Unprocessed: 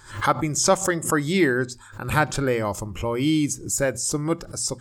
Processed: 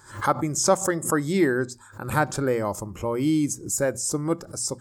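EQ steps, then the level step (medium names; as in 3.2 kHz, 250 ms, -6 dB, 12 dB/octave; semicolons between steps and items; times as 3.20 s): high-pass 120 Hz 6 dB/octave; peaking EQ 2.9 kHz -10 dB 1.3 oct; 0.0 dB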